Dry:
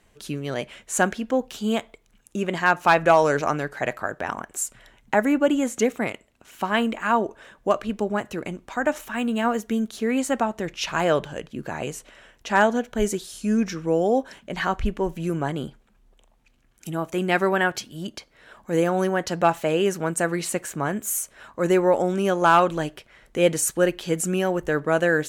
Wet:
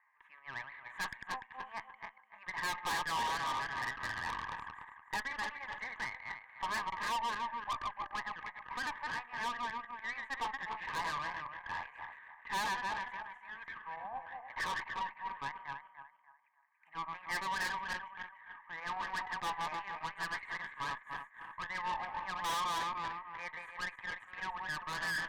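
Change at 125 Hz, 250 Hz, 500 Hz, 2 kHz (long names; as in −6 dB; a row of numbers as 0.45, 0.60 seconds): −24.5, −30.0, −30.5, −10.0 decibels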